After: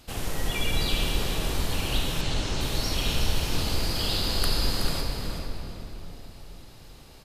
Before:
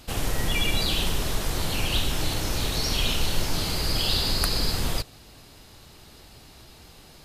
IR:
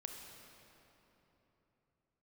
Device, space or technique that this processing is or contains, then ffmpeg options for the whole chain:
cave: -filter_complex "[0:a]aecho=1:1:373:0.335[s0];[1:a]atrim=start_sample=2205[s1];[s0][s1]afir=irnorm=-1:irlink=0,asettb=1/sr,asplit=3[s2][s3][s4];[s2]atrim=end=2.214[s5];[s3]atrim=start=2.21:end=2.61,asetpts=PTS-STARTPTS,afade=t=in:d=0.004:c=qsin,afade=t=out:st=0.396:d=0.004:c=qsin,lowpass=f=8200:w=0.5412,lowpass=f=8200:w=1.3066[s6];[s4]atrim=start=2.606[s7];[s5][s6]acrossfade=d=0.004:c1=hsin:c2=qsin[s8];[s8][s7]acrossfade=d=0.004:c1=qsin:c2=hsin,asplit=2[s9][s10];[s10]adelay=443.1,volume=0.447,highshelf=f=4000:g=-9.97[s11];[s9][s11]amix=inputs=2:normalize=0"

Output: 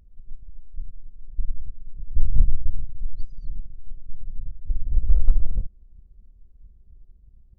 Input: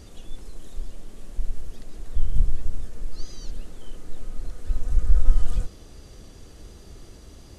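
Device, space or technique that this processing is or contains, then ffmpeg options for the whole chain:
voice memo with heavy noise removal: -af "anlmdn=39.8,dynaudnorm=f=270:g=11:m=3.76,volume=0.891"

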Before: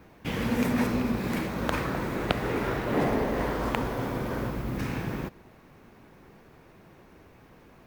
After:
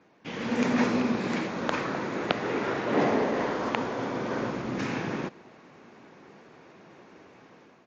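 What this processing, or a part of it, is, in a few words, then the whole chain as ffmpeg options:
Bluetooth headset: -af "highpass=200,dynaudnorm=f=200:g=5:m=2.99,aresample=16000,aresample=44100,volume=0.501" -ar 16000 -c:a sbc -b:a 64k

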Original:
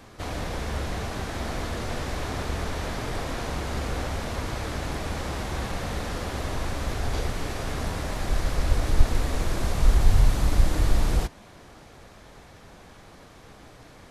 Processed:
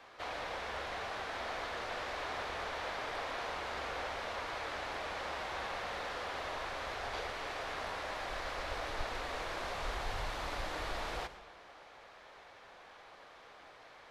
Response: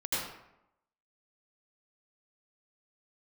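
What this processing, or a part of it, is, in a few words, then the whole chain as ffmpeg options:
saturated reverb return: -filter_complex "[0:a]acrossover=split=480 4600:gain=0.0891 1 0.158[s0][s1][s2];[s0][s1][s2]amix=inputs=3:normalize=0,asplit=2[s3][s4];[1:a]atrim=start_sample=2205[s5];[s4][s5]afir=irnorm=-1:irlink=0,asoftclip=type=tanh:threshold=0.0251,volume=0.2[s6];[s3][s6]amix=inputs=2:normalize=0,volume=0.631"

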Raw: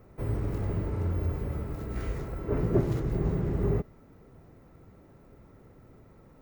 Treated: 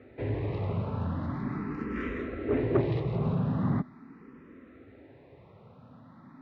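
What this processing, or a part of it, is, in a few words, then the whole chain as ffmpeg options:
barber-pole phaser into a guitar amplifier: -filter_complex "[0:a]asplit=2[s0][s1];[s1]afreqshift=0.41[s2];[s0][s2]amix=inputs=2:normalize=1,asoftclip=type=tanh:threshold=0.075,highpass=110,equalizer=f=250:t=q:w=4:g=9,equalizer=f=1100:t=q:w=4:g=5,equalizer=f=1800:t=q:w=4:g=6,equalizer=f=2500:t=q:w=4:g=5,equalizer=f=3800:t=q:w=4:g=5,lowpass=f=4200:w=0.5412,lowpass=f=4200:w=1.3066,volume=1.68"

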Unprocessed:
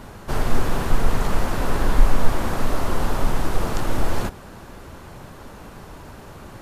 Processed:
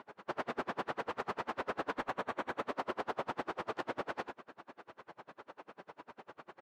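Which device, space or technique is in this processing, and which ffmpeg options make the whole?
helicopter radio: -filter_complex "[0:a]asettb=1/sr,asplit=3[s0][s1][s2];[s0]atrim=end=2.064[s3];[s1]atrim=start=2.06:end=2.64,asetpts=PTS-STARTPTS,afade=t=in:d=0.004:c=qsin,afade=t=out:st=0.576:d=0.004:c=qsin,bandreject=f=5000:w=6[s4];[s2]atrim=start=2.636[s5];[s3][s4]acrossfade=d=0.004:c1=hsin:c2=qsin[s6];[s6][s5]acrossfade=d=0.004:c1=qsin:c2=hsin,highpass=370,lowpass=2800,aecho=1:1:33|67:0.355|0.178,aeval=exprs='val(0)*pow(10,-35*(0.5-0.5*cos(2*PI*10*n/s))/20)':c=same,asoftclip=type=hard:threshold=0.0596,volume=0.708"

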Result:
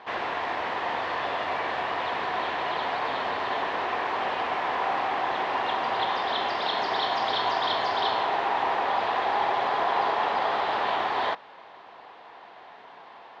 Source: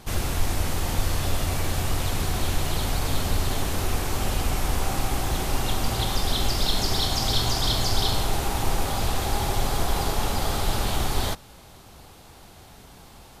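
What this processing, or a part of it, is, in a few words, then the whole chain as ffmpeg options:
phone earpiece: -af "highpass=430,equalizer=f=460:t=q:w=4:g=3,equalizer=f=700:t=q:w=4:g=6,equalizer=f=1000:t=q:w=4:g=10,equalizer=f=1800:t=q:w=4:g=8,lowpass=f=3400:w=0.5412,lowpass=f=3400:w=1.3066"

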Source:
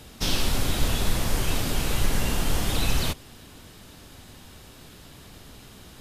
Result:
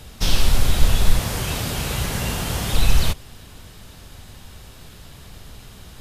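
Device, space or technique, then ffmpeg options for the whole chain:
low shelf boost with a cut just above: -filter_complex "[0:a]asettb=1/sr,asplit=3[s0][s1][s2];[s0]atrim=end=1.204[s3];[s1]atrim=start=1.2:end=2.74,asetpts=PTS-STARTPTS,afade=t=in:d=0.004:c=qsin,afade=t=out:st=1.536:d=0.004:c=qsin,highpass=78[s4];[s2]atrim=start=2.736[s5];[s3][s4]acrossfade=d=0.004:c1=hsin:c2=qsin[s6];[s6][s5]acrossfade=d=0.004:c1=qsin:c2=hsin,lowshelf=f=92:g=7.5,equalizer=f=290:t=o:w=0.75:g=-5.5,volume=1.41"

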